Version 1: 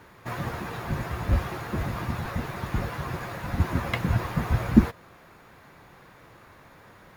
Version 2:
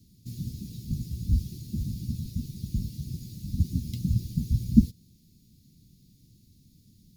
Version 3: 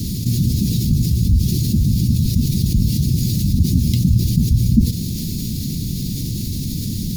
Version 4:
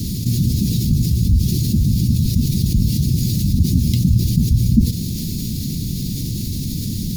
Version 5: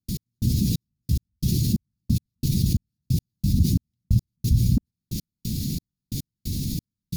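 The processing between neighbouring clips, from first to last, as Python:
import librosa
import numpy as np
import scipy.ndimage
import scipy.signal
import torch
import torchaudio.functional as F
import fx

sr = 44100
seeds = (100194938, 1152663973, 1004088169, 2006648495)

y1 = scipy.signal.sosfilt(scipy.signal.cheby1(3, 1.0, [230.0, 4600.0], 'bandstop', fs=sr, output='sos'), x)
y2 = fx.env_flatten(y1, sr, amount_pct=70)
y2 = F.gain(torch.from_numpy(y2), 2.5).numpy()
y3 = y2
y4 = fx.step_gate(y3, sr, bpm=179, pattern='.x...xxxx...', floor_db=-60.0, edge_ms=4.5)
y4 = F.gain(torch.from_numpy(y4), -4.0).numpy()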